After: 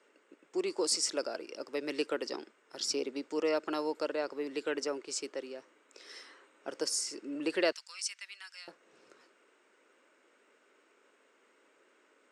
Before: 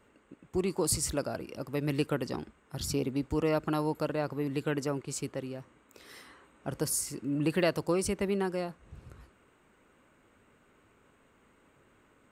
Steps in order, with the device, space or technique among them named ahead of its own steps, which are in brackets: phone speaker on a table (cabinet simulation 340–8300 Hz, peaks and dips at 770 Hz -5 dB, 1.1 kHz -4 dB, 5.3 kHz +8 dB); 7.72–8.68 s: Bessel high-pass 2.3 kHz, order 4

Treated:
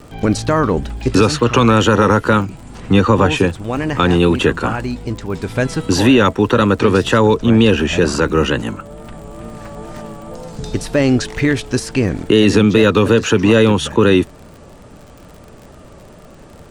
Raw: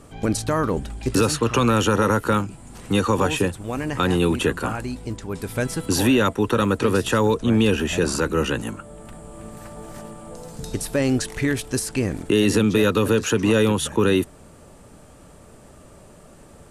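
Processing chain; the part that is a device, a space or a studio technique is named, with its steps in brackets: lo-fi chain (low-pass 5.7 kHz 12 dB/octave; wow and flutter; crackle 49 per s -38 dBFS); 2.80–3.32 s: tone controls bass +3 dB, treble -5 dB; trim +7 dB

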